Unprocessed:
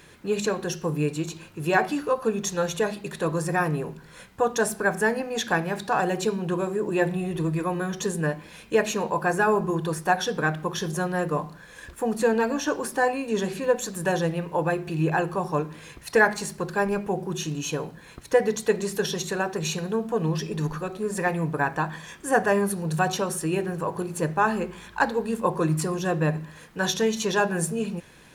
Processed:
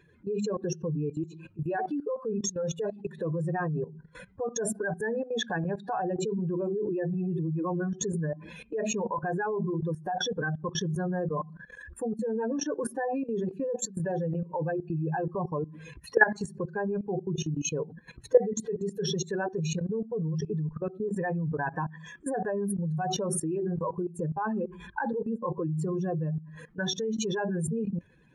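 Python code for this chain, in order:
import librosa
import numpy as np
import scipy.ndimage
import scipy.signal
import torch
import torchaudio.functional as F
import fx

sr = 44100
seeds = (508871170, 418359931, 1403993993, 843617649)

y = fx.spec_expand(x, sr, power=2.2)
y = fx.level_steps(y, sr, step_db=16)
y = y * librosa.db_to_amplitude(2.5)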